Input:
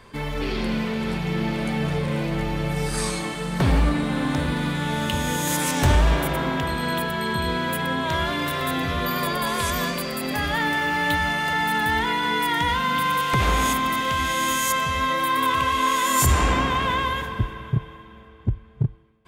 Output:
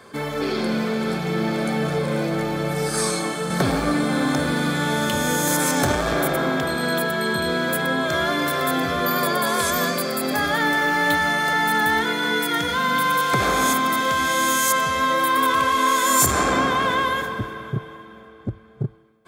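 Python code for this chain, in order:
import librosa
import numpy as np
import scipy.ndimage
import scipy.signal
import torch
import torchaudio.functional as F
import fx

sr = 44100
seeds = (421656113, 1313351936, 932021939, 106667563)

y = fx.peak_eq(x, sr, hz=2700.0, db=-9.5, octaves=0.61)
y = 10.0 ** (-12.0 / 20.0) * np.tanh(y / 10.0 ** (-12.0 / 20.0))
y = fx.highpass(y, sr, hz=280.0, slope=6)
y = fx.notch_comb(y, sr, f0_hz=950.0)
y = fx.band_squash(y, sr, depth_pct=40, at=(3.5, 6.13))
y = y * librosa.db_to_amplitude(7.0)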